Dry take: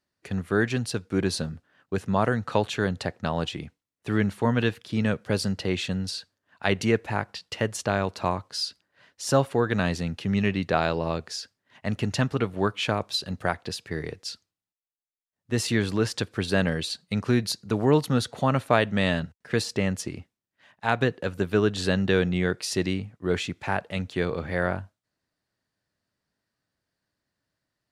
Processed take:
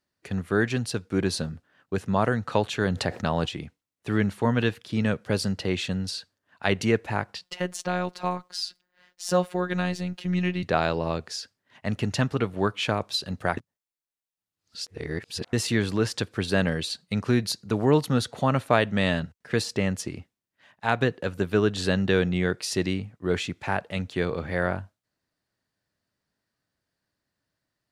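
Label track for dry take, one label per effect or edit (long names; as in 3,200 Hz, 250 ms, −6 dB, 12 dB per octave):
2.810000	3.460000	envelope flattener amount 50%
7.440000	10.630000	phases set to zero 180 Hz
13.570000	15.530000	reverse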